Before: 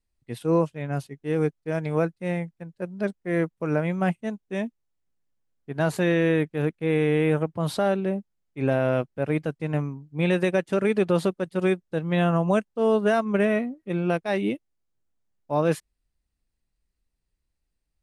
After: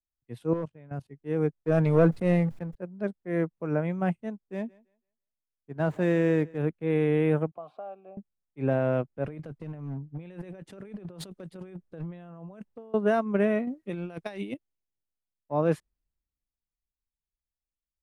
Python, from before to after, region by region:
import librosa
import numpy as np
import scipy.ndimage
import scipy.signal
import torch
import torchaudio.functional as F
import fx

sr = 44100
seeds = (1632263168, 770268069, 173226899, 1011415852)

y = fx.chain(x, sr, fx.clip_hard(threshold_db=-16.0),
    fx.level_steps(step_db=14), at=(0.53, 1.1))
y = fx.chain(y, sr, fx.leveller(passes=2),
    fx.sustainer(db_per_s=40.0), at=(1.62, 2.75))
y = fx.chain(y, sr, fx.median_filter(points=9),
    fx.echo_thinned(ms=166, feedback_pct=29, hz=260.0, wet_db=-22.0), at=(4.44, 6.58))
y = fx.chain(y, sr, fx.vowel_filter(vowel='a'),
    fx.band_squash(depth_pct=70), at=(7.51, 8.17))
y = fx.chain(y, sr, fx.over_compress(threshold_db=-34.0, ratio=-1.0),
    fx.clip_hard(threshold_db=-25.5), at=(9.24, 12.94))
y = fx.chain(y, sr, fx.high_shelf(hz=2100.0, db=10.0),
    fx.over_compress(threshold_db=-28.0, ratio=-0.5), at=(13.67, 14.54))
y = fx.high_shelf(y, sr, hz=2300.0, db=-11.0)
y = fx.band_widen(y, sr, depth_pct=40)
y = y * librosa.db_to_amplitude(-2.5)